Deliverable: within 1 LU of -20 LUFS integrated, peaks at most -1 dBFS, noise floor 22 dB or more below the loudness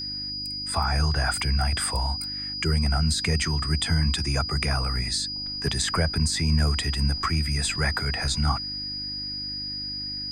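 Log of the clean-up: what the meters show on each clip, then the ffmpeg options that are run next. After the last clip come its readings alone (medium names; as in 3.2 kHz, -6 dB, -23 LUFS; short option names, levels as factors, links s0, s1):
hum 50 Hz; highest harmonic 300 Hz; hum level -41 dBFS; steady tone 4.9 kHz; tone level -30 dBFS; loudness -25.5 LUFS; peak level -11.5 dBFS; loudness target -20.0 LUFS
-> -af "bandreject=f=50:t=h:w=4,bandreject=f=100:t=h:w=4,bandreject=f=150:t=h:w=4,bandreject=f=200:t=h:w=4,bandreject=f=250:t=h:w=4,bandreject=f=300:t=h:w=4"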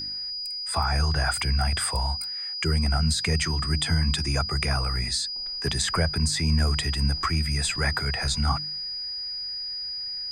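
hum not found; steady tone 4.9 kHz; tone level -30 dBFS
-> -af "bandreject=f=4900:w=30"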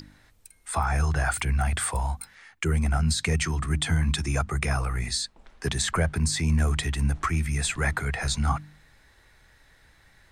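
steady tone not found; loudness -26.5 LUFS; peak level -12.0 dBFS; loudness target -20.0 LUFS
-> -af "volume=2.11"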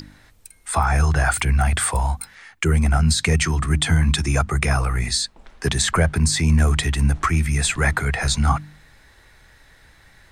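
loudness -20.0 LUFS; peak level -5.5 dBFS; noise floor -53 dBFS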